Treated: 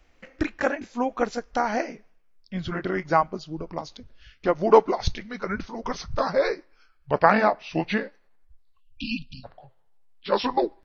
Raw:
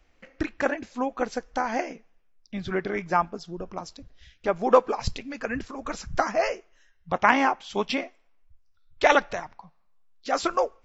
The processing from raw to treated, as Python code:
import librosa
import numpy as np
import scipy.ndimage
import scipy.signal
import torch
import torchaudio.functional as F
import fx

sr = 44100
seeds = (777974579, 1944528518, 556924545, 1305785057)

y = fx.pitch_glide(x, sr, semitones=-5.5, runs='starting unshifted')
y = fx.spec_erase(y, sr, start_s=8.81, length_s=0.63, low_hz=290.0, high_hz=2400.0)
y = y * librosa.db_to_amplitude(3.0)